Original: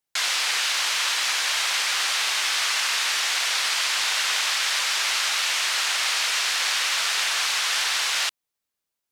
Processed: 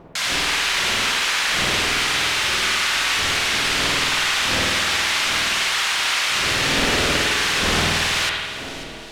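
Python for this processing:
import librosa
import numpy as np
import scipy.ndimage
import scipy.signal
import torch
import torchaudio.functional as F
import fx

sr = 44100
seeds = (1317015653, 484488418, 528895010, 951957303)

y = fx.dmg_wind(x, sr, seeds[0], corner_hz=540.0, level_db=-36.0)
y = fx.echo_split(y, sr, split_hz=2400.0, low_ms=348, high_ms=541, feedback_pct=52, wet_db=-14.5)
y = fx.rev_spring(y, sr, rt60_s=1.4, pass_ms=(50,), chirp_ms=45, drr_db=-3.0)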